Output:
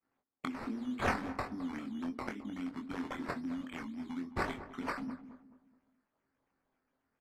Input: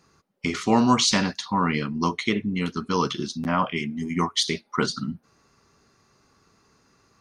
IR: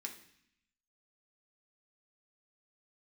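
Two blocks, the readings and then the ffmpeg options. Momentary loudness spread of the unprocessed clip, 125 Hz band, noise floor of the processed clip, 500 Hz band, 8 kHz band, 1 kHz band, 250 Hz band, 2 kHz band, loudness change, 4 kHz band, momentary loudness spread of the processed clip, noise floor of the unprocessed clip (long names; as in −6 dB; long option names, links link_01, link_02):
10 LU, −18.0 dB, −84 dBFS, −14.5 dB, −27.0 dB, −14.5 dB, −13.0 dB, −11.0 dB, −15.0 dB, −25.0 dB, 9 LU, −65 dBFS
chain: -filter_complex "[0:a]agate=range=-33dB:threshold=-51dB:ratio=3:detection=peak,asplit=3[link_01][link_02][link_03];[link_01]bandpass=frequency=270:width_type=q:width=8,volume=0dB[link_04];[link_02]bandpass=frequency=2290:width_type=q:width=8,volume=-6dB[link_05];[link_03]bandpass=frequency=3010:width_type=q:width=8,volume=-9dB[link_06];[link_04][link_05][link_06]amix=inputs=3:normalize=0,asubboost=boost=11.5:cutoff=57,acompressor=threshold=-40dB:ratio=10,asoftclip=type=tanh:threshold=-31.5dB,aexciter=amount=12.1:drive=7.1:freq=4300,acrusher=samples=11:mix=1:aa=0.000001:lfo=1:lforange=6.6:lforate=3.7,aemphasis=mode=reproduction:type=75fm,asplit=2[link_07][link_08];[link_08]adelay=23,volume=-5.5dB[link_09];[link_07][link_09]amix=inputs=2:normalize=0,asplit=2[link_10][link_11];[link_11]adelay=213,lowpass=frequency=1100:poles=1,volume=-12.5dB,asplit=2[link_12][link_13];[link_13]adelay=213,lowpass=frequency=1100:poles=1,volume=0.41,asplit=2[link_14][link_15];[link_15]adelay=213,lowpass=frequency=1100:poles=1,volume=0.41,asplit=2[link_16][link_17];[link_17]adelay=213,lowpass=frequency=1100:poles=1,volume=0.41[link_18];[link_10][link_12][link_14][link_16][link_18]amix=inputs=5:normalize=0,asplit=2[link_19][link_20];[1:a]atrim=start_sample=2205,lowpass=2500[link_21];[link_20][link_21]afir=irnorm=-1:irlink=0,volume=-12dB[link_22];[link_19][link_22]amix=inputs=2:normalize=0,aresample=32000,aresample=44100,volume=1dB"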